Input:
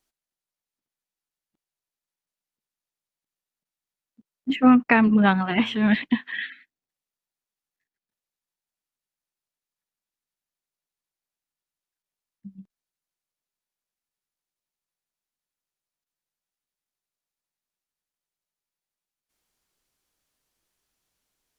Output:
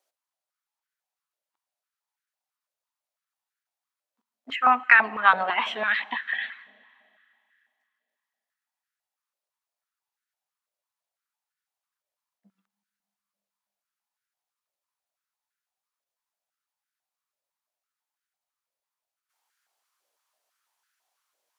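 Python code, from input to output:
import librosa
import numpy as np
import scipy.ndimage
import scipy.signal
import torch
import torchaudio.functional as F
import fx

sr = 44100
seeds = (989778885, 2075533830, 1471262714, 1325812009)

y = fx.rev_schroeder(x, sr, rt60_s=2.7, comb_ms=30, drr_db=19.5)
y = fx.filter_held_highpass(y, sr, hz=6.0, low_hz=570.0, high_hz=1500.0)
y = y * 10.0 ** (-1.5 / 20.0)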